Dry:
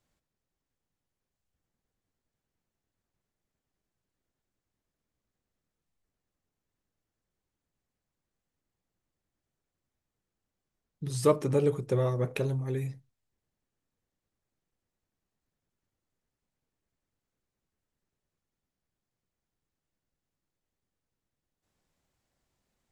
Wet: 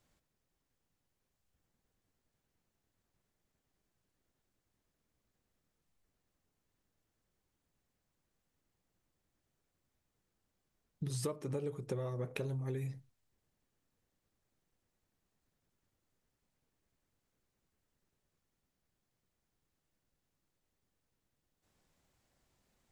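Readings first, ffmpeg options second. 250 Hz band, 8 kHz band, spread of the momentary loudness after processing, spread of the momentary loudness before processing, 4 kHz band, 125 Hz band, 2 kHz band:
-10.0 dB, -5.5 dB, 5 LU, 11 LU, -6.0 dB, -8.5 dB, -7.5 dB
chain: -af "acompressor=threshold=0.0126:ratio=12,volume=1.41"

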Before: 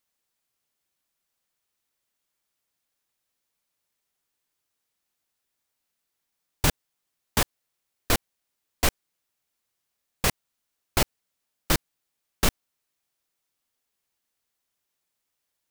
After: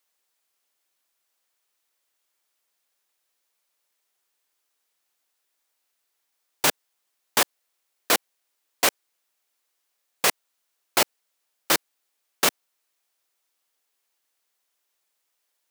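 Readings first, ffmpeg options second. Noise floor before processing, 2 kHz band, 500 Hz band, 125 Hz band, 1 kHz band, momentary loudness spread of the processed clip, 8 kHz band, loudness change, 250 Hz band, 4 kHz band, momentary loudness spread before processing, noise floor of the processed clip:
-81 dBFS, +4.5 dB, +3.0 dB, -15.0 dB, +4.5 dB, 2 LU, +4.5 dB, +3.5 dB, -3.5 dB, +4.5 dB, 2 LU, -77 dBFS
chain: -af "highpass=390,volume=1.68"

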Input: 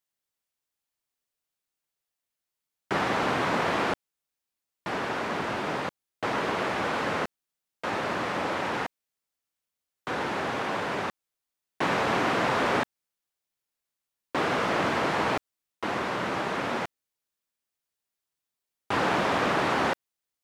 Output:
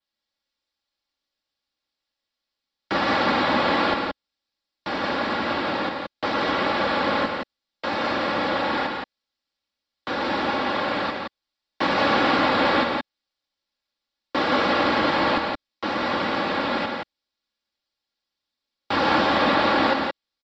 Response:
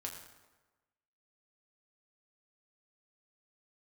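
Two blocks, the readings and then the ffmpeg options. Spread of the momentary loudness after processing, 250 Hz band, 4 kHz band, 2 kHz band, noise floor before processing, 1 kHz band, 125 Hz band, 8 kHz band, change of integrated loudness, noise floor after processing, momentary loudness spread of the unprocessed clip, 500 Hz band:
12 LU, +6.5 dB, +8.0 dB, +5.0 dB, under -85 dBFS, +5.5 dB, +1.0 dB, no reading, +5.5 dB, -85 dBFS, 10 LU, +5.0 dB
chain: -filter_complex "[0:a]adynamicequalizer=threshold=0.001:dfrequency=6000:dqfactor=2.9:tfrequency=6000:tqfactor=2.9:attack=5:release=100:ratio=0.375:range=3.5:mode=cutabove:tftype=bell,aecho=1:1:3.6:0.53,acrossover=split=230|5200[s0][s1][s2];[s1]aexciter=amount=3.1:drive=3:freq=3700[s3];[s0][s3][s2]amix=inputs=3:normalize=0,aecho=1:1:116.6|172:0.316|0.631,aresample=16000,aresample=44100,volume=1.41" -ar 48000 -c:a libmp3lame -b:a 64k

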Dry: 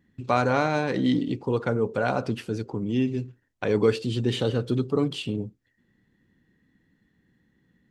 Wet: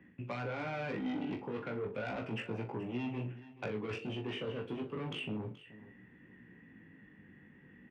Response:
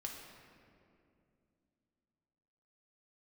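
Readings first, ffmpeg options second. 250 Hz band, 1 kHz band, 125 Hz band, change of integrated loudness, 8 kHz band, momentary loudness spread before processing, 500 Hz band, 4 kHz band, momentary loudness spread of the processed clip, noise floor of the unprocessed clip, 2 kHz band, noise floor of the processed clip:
-13.0 dB, -15.0 dB, -13.5 dB, -13.5 dB, under -15 dB, 9 LU, -14.5 dB, -11.5 dB, 20 LU, -71 dBFS, -10.0 dB, -60 dBFS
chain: -filter_complex "[0:a]firequalizer=gain_entry='entry(1600,0);entry(2600,5);entry(4000,-22)':delay=0.05:min_phase=1,areverse,acompressor=threshold=0.0224:ratio=10,areverse,asoftclip=type=tanh:threshold=0.02,acrossover=split=170|350|1900[s0][s1][s2][s3];[s0]acompressor=threshold=0.00282:ratio=4[s4];[s1]acompressor=threshold=0.002:ratio=4[s5];[s2]acompressor=threshold=0.00282:ratio=4[s6];[s3]acompressor=threshold=0.00158:ratio=4[s7];[s4][s5][s6][s7]amix=inputs=4:normalize=0,highpass=f=130:p=1,flanger=delay=16.5:depth=3.8:speed=0.33,asplit=2[s8][s9];[s9]adelay=42,volume=0.316[s10];[s8][s10]amix=inputs=2:normalize=0,asplit=2[s11][s12];[s12]aecho=0:1:428:0.141[s13];[s11][s13]amix=inputs=2:normalize=0,volume=3.98"

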